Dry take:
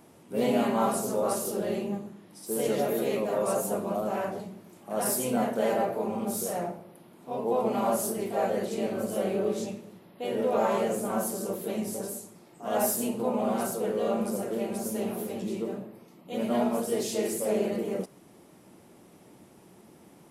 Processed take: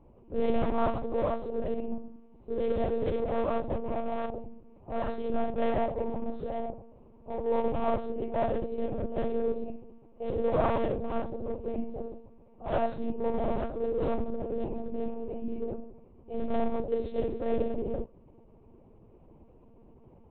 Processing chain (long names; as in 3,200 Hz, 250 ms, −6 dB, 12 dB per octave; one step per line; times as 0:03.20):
adaptive Wiener filter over 25 samples
one-pitch LPC vocoder at 8 kHz 230 Hz